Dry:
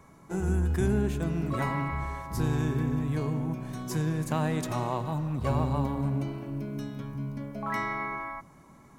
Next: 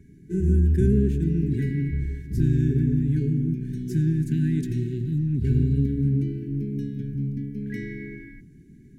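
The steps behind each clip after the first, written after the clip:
brick-wall band-stop 440–1,500 Hz
tilt shelving filter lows +8 dB, about 680 Hz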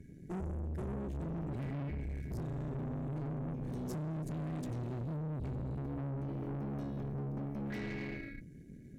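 downward compressor 8 to 1, threshold −27 dBFS, peak gain reduction 12 dB
tube saturation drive 38 dB, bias 0.75
level +1.5 dB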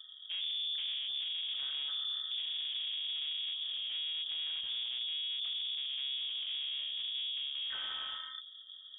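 voice inversion scrambler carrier 3,500 Hz

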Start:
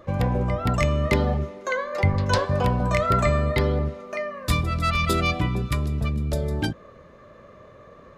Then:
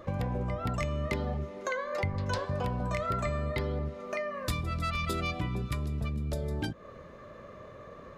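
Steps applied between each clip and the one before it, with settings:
downward compressor 3 to 1, threshold −32 dBFS, peak gain reduction 12.5 dB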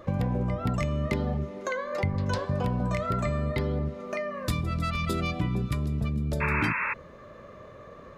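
dynamic equaliser 190 Hz, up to +6 dB, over −47 dBFS, Q 0.71
sound drawn into the spectrogram noise, 0:06.40–0:06.94, 850–2,700 Hz −30 dBFS
level +1 dB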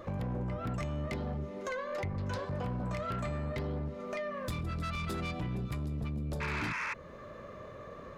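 in parallel at +1 dB: downward compressor, threshold −37 dBFS, peak gain reduction 14.5 dB
on the sum: soft clipping −24 dBFS, distortion −12 dB
level −6.5 dB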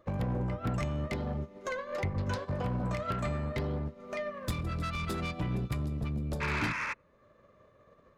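feedback echo with a low-pass in the loop 90 ms, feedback 78%, low-pass 1,500 Hz, level −20 dB
expander for the loud parts 2.5 to 1, over −48 dBFS
level +5.5 dB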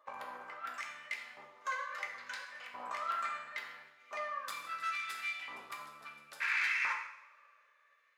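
auto-filter high-pass saw up 0.73 Hz 970–2,200 Hz
convolution reverb, pre-delay 3 ms, DRR 0.5 dB
level −5.5 dB

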